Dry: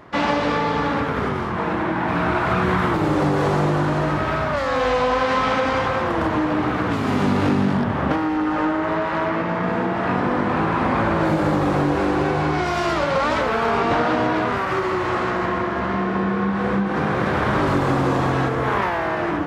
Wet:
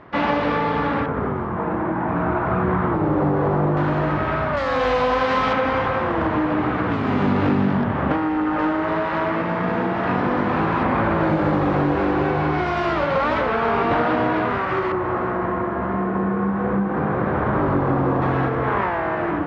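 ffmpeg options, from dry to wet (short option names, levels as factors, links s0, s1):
-af "asetnsamples=n=441:p=0,asendcmd='1.06 lowpass f 1300;3.77 lowpass f 2800;4.57 lowpass f 4900;5.53 lowpass f 2900;8.59 lowpass f 4500;10.83 lowpass f 3000;14.92 lowpass f 1400;18.22 lowpass f 2200',lowpass=3000"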